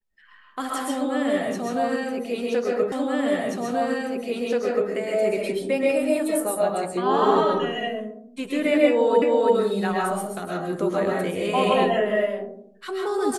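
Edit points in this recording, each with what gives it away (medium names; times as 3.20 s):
2.92 s: repeat of the last 1.98 s
9.22 s: repeat of the last 0.33 s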